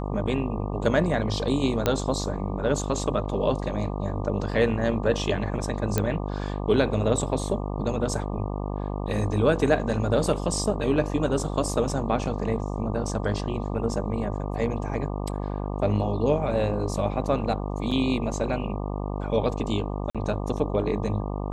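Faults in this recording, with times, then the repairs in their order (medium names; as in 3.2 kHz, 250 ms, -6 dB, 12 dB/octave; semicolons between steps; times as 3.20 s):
buzz 50 Hz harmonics 24 -30 dBFS
1.86 s: pop -8 dBFS
5.98 s: pop -9 dBFS
17.91 s: dropout 4.9 ms
20.10–20.15 s: dropout 46 ms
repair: de-click; de-hum 50 Hz, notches 24; interpolate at 17.91 s, 4.9 ms; interpolate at 20.10 s, 46 ms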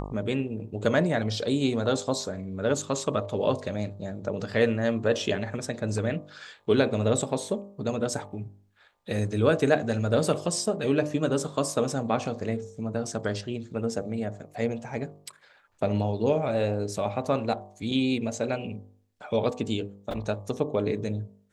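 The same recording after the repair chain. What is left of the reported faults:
nothing left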